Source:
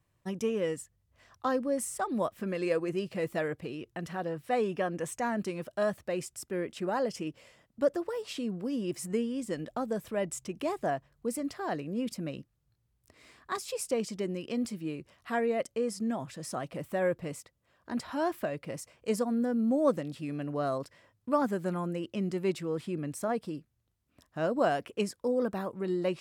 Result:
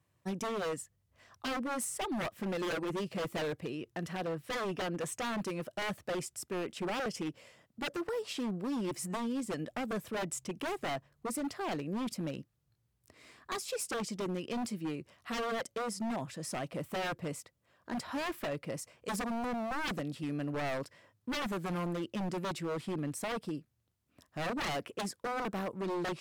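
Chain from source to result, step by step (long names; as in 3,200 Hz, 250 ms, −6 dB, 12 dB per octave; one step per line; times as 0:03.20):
high-pass filter 74 Hz 12 dB per octave
wave folding −30 dBFS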